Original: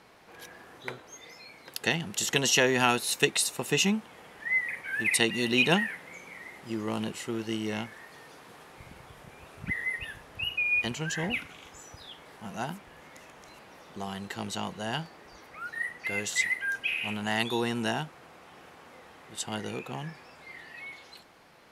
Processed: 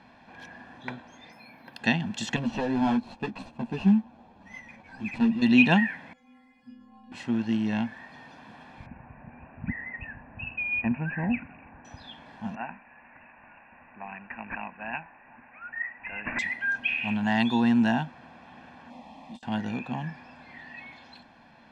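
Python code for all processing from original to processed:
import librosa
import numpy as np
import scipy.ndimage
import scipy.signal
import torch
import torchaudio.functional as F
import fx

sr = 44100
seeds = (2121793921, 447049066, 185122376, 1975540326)

y = fx.chain(x, sr, fx.highpass(hz=89.0, slope=12),
    fx.high_shelf(hz=4300.0, db=-11.5),
    fx.resample_bad(factor=3, down='filtered', up='zero_stuff'), at=(1.32, 1.79))
y = fx.chain(y, sr, fx.median_filter(points=25),
    fx.ensemble(), at=(2.36, 5.42))
y = fx.chain(y, sr, fx.low_shelf(hz=130.0, db=12.0),
    fx.over_compress(threshold_db=-35.0, ratio=-1.0),
    fx.stiff_resonator(f0_hz=250.0, decay_s=0.79, stiffness=0.008), at=(6.13, 7.12))
y = fx.chain(y, sr, fx.spacing_loss(db_at_10k=21),
    fx.resample_bad(factor=8, down='none', up='filtered'), at=(8.86, 11.85))
y = fx.chain(y, sr, fx.highpass(hz=1200.0, slope=6),
    fx.resample_bad(factor=8, down='none', up='filtered'), at=(12.55, 16.39))
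y = fx.chain(y, sr, fx.over_compress(threshold_db=-47.0, ratio=-1.0),
    fx.brickwall_lowpass(high_hz=13000.0),
    fx.fixed_phaser(hz=410.0, stages=6), at=(18.9, 19.43))
y = scipy.signal.sosfilt(scipy.signal.butter(2, 3600.0, 'lowpass', fs=sr, output='sos'), y)
y = fx.peak_eq(y, sr, hz=240.0, db=12.5, octaves=0.41)
y = y + 0.64 * np.pad(y, (int(1.2 * sr / 1000.0), 0))[:len(y)]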